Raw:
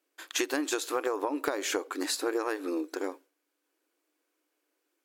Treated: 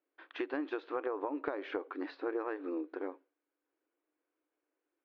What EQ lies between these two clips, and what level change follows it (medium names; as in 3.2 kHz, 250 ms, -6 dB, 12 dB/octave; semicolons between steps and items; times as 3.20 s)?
Gaussian low-pass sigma 3 samples; distance through air 140 m; -5.0 dB